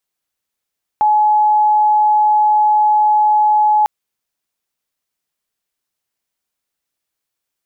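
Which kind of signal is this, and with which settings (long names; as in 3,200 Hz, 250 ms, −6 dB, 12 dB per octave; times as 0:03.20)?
tone sine 848 Hz −9 dBFS 2.85 s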